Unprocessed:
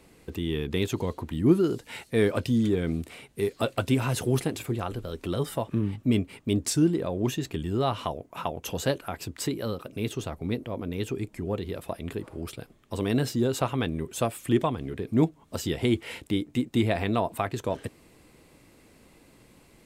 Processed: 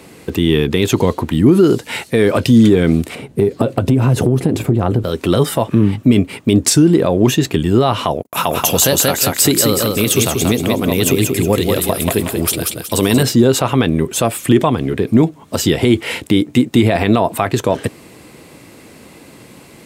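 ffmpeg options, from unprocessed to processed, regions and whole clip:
ffmpeg -i in.wav -filter_complex "[0:a]asettb=1/sr,asplit=3[link_01][link_02][link_03];[link_01]atrim=end=3.154[link_04];[link_02]atrim=start=3.15:end=5.04,asetpts=PTS-STARTPTS,afade=type=in:duration=0.004:curve=qsin,afade=type=out:start_time=1.886:duration=0.004:curve=qsin,tiltshelf=frequency=780:gain=8.5,acompressor=threshold=-24dB:ratio=10:attack=3.2:release=140:knee=1:detection=peak[link_05];[link_03]atrim=start=5.036[link_06];[link_04][link_05]acrossfade=duration=0.004:curve1=hsin:curve2=qsin[link_07];[link_07][link_06]acrossfade=duration=0.004:curve1=qsin:curve2=hsin,asettb=1/sr,asplit=3[link_08][link_09][link_10];[link_08]atrim=end=8.224[link_11];[link_09]atrim=start=8.22:end=13.23,asetpts=PTS-STARTPTS,afade=type=in:duration=0.004:curve=qsin,afade=type=out:start_time=5.006:duration=0.004:curve=qsin,agate=range=-43dB:threshold=-53dB:ratio=16:release=100:detection=peak,aemphasis=mode=production:type=75kf,aecho=1:1:183|366|549|732:0.596|0.203|0.0689|0.0234,atrim=end_sample=220941[link_12];[link_10]atrim=start=13.226[link_13];[link_11][link_12]acrossfade=duration=0.004:curve1=hsin:curve2=qsin[link_14];[link_14][link_13]acrossfade=duration=0.004:curve1=qsin:curve2=hsin,highpass=95,alimiter=level_in=17.5dB:limit=-1dB:release=50:level=0:latency=1,volume=-1dB" out.wav

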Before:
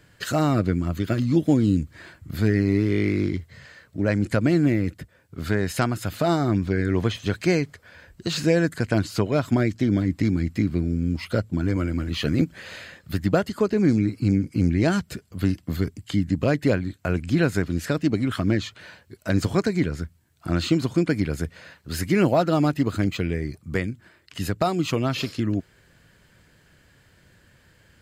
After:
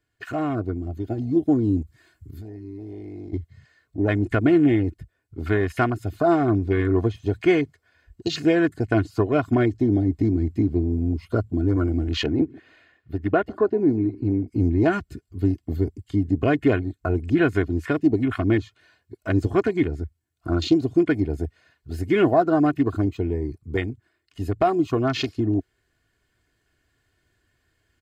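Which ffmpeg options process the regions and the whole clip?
ffmpeg -i in.wav -filter_complex "[0:a]asettb=1/sr,asplit=3[link_01][link_02][link_03];[link_01]atrim=end=1.824[link_04];[link_02]atrim=start=1.82:end=3.33,asetpts=PTS-STARTPTS,afade=type=in:duration=0.004:curve=qsin,afade=type=out:start_time=1.506:duration=0.004:curve=qsin,aemphasis=mode=production:type=cd,acompressor=threshold=-33dB:ratio=8:attack=3.2:release=140:knee=1:detection=peak[link_05];[link_03]atrim=start=3.326[link_06];[link_04][link_05]acrossfade=duration=0.004:curve1=hsin:curve2=qsin[link_07];[link_07][link_06]acrossfade=duration=0.004:curve1=qsin:curve2=hsin,asettb=1/sr,asplit=3[link_08][link_09][link_10];[link_08]atrim=end=12.244[link_11];[link_09]atrim=start=12.24:end=14.48,asetpts=PTS-STARTPTS,afade=type=in:duration=0.004:curve=qsin,afade=type=out:start_time=2.236:duration=0.004:curve=qsin,bass=frequency=250:gain=-4,treble=frequency=4000:gain=-14,aecho=1:1:144|288|432:0.075|0.0322|0.0139,atrim=end_sample=98784[link_12];[link_10]atrim=start=14.476[link_13];[link_11][link_12]acrossfade=duration=0.004:curve1=hsin:curve2=qsin[link_14];[link_14][link_13]acrossfade=duration=0.004:curve1=qsin:curve2=hsin,afwtdn=0.0251,aecho=1:1:2.8:0.64,dynaudnorm=framelen=1000:gausssize=3:maxgain=9dB,volume=-5.5dB" out.wav

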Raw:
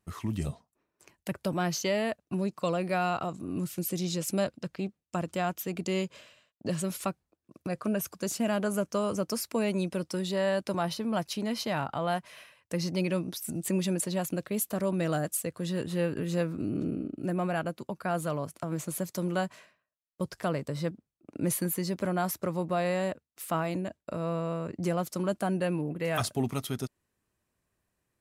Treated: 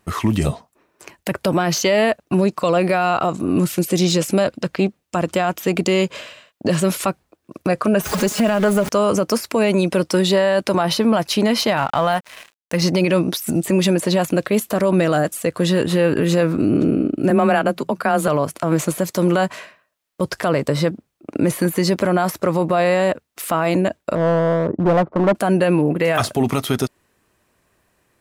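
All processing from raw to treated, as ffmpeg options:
ffmpeg -i in.wav -filter_complex "[0:a]asettb=1/sr,asplit=3[link_01][link_02][link_03];[link_01]atrim=end=8.014[link_04];[link_02]atrim=start=8.01:end=8.89,asetpts=PTS-STARTPTS,afade=type=in:duration=0.004:curve=qsin,afade=type=out:start_time=0.876:duration=0.004:curve=qsin,aeval=exprs='val(0)+0.5*0.02*sgn(val(0))':channel_layout=same,aecho=1:1:4.8:0.68,atrim=end_sample=38808,acompressor=threshold=-29dB:ratio=6:attack=3.2:release=140:knee=1:detection=peak[link_05];[link_03]atrim=start=8.886[link_06];[link_04][link_05]acrossfade=duration=0.004:curve1=hsin:curve2=qsin[link_07];[link_07][link_06]acrossfade=duration=0.004:curve1=qsin:curve2=hsin,asettb=1/sr,asplit=3[link_08][link_09][link_10];[link_08]atrim=end=11.774[link_11];[link_09]atrim=start=11.77:end=12.82,asetpts=PTS-STARTPTS,afade=type=in:duration=0.004:curve=qsin,afade=type=out:start_time=1.046:duration=0.004:curve=qsin,deesser=1,equalizer=frequency=380:width=1.4:gain=-7,aeval=exprs='sgn(val(0))*max(abs(val(0))-0.00282,0)':channel_layout=same[link_12];[link_10]atrim=start=12.816[link_13];[link_11][link_12]acrossfade=duration=0.004:curve1=hsin:curve2=qsin[link_14];[link_14][link_13]acrossfade=duration=0.004:curve1=qsin:curve2=hsin,asettb=1/sr,asplit=3[link_15][link_16][link_17];[link_15]atrim=end=17.304[link_18];[link_16]atrim=start=17.3:end=18.28,asetpts=PTS-STARTPTS,afade=type=in:duration=0.004:curve=qsin,afade=type=out:start_time=0.976:duration=0.004:curve=qsin,bandreject=frequency=50:width_type=h:width=6,bandreject=frequency=100:width_type=h:width=6,bandreject=frequency=150:width_type=h:width=6,afreqshift=19[link_19];[link_17]atrim=start=18.276[link_20];[link_18][link_19]acrossfade=duration=0.004:curve1=hsin:curve2=qsin[link_21];[link_21][link_20]acrossfade=duration=0.004:curve1=qsin:curve2=hsin,asettb=1/sr,asplit=3[link_22][link_23][link_24];[link_22]atrim=end=24.154[link_25];[link_23]atrim=start=24.15:end=25.35,asetpts=PTS-STARTPTS,afade=type=in:duration=0.004:curve=qsin,afade=type=out:start_time=1.196:duration=0.004:curve=qsin,lowpass=frequency=1100:width=0.5412,lowpass=frequency=1100:width=1.3066,volume=28.5dB,asoftclip=hard,volume=-28.5dB[link_26];[link_24]atrim=start=25.346[link_27];[link_25][link_26]acrossfade=duration=0.004:curve1=hsin:curve2=qsin[link_28];[link_28][link_27]acrossfade=duration=0.004:curve1=qsin:curve2=hsin,deesser=0.75,bass=frequency=250:gain=-6,treble=frequency=4000:gain=-4,alimiter=level_in=25.5dB:limit=-1dB:release=50:level=0:latency=1,volume=-6.5dB" out.wav

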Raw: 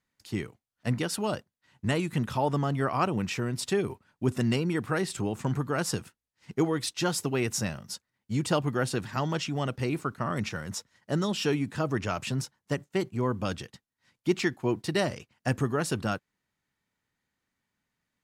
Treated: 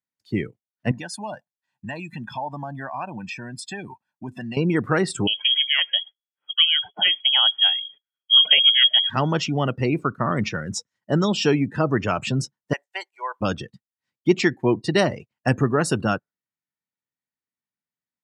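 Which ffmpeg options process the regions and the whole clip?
ffmpeg -i in.wav -filter_complex "[0:a]asettb=1/sr,asplit=3[link_01][link_02][link_03];[link_01]atrim=end=0.914[link_04];[link_02]atrim=start=0.91:end=4.57,asetpts=PTS-STARTPTS,afade=type=in:duration=0.004:curve=qsin,afade=type=out:start_time=3.656:duration=0.004:curve=qsin,highpass=frequency=420:poles=1,aecho=1:1:1.2:0.69,atrim=end_sample=161406,acompressor=threshold=-42dB:ratio=2:attack=3.2:release=140:knee=1:detection=peak[link_05];[link_03]atrim=start=4.566[link_06];[link_04][link_05]acrossfade=duration=0.004:curve1=hsin:curve2=qsin[link_07];[link_07][link_06]acrossfade=duration=0.004:curve1=qsin:curve2=hsin,asettb=1/sr,asplit=3[link_08][link_09][link_10];[link_08]atrim=end=5.274[link_11];[link_09]atrim=start=5.27:end=9.1,asetpts=PTS-STARTPTS,afade=type=in:duration=0.004:curve=qsin,afade=type=out:start_time=3.826:duration=0.004:curve=qsin,deesser=0.5,asubboost=boost=6:cutoff=150,lowpass=frequency=2900:width_type=q:width=0.5098,lowpass=frequency=2900:width_type=q:width=0.6013,lowpass=frequency=2900:width_type=q:width=0.9,lowpass=frequency=2900:width_type=q:width=2.563,afreqshift=-3400[link_12];[link_10]atrim=start=9.096[link_13];[link_11][link_12]acrossfade=duration=0.004:curve1=hsin:curve2=qsin[link_14];[link_14][link_13]acrossfade=duration=0.004:curve1=qsin:curve2=hsin,asettb=1/sr,asplit=3[link_15][link_16][link_17];[link_15]atrim=end=12.734[link_18];[link_16]atrim=start=12.73:end=13.41,asetpts=PTS-STARTPTS,afade=type=in:duration=0.004:curve=qsin,afade=type=out:start_time=0.676:duration=0.004:curve=qsin,highpass=frequency=750:width=0.5412,highpass=frequency=750:width=1.3066,equalizer=frequency=1200:width_type=o:width=0.21:gain=-7,bandreject=frequency=1300:width=21[link_19];[link_17]atrim=start=13.406[link_20];[link_18][link_19]acrossfade=duration=0.004:curve1=hsin:curve2=qsin[link_21];[link_21][link_20]acrossfade=duration=0.004:curve1=qsin:curve2=hsin,afftdn=noise_reduction=24:noise_floor=-41,highpass=100,volume=8dB" out.wav

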